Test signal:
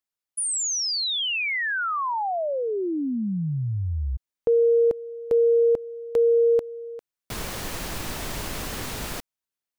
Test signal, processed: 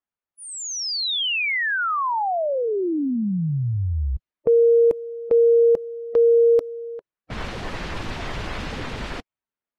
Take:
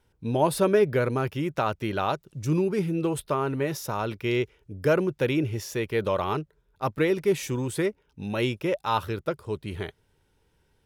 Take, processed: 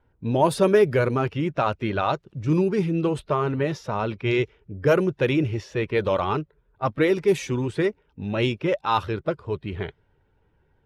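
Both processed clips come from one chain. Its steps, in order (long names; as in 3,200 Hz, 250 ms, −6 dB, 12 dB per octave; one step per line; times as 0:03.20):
spectral magnitudes quantised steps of 15 dB
low-pass that shuts in the quiet parts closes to 1,800 Hz, open at −17 dBFS
level +3.5 dB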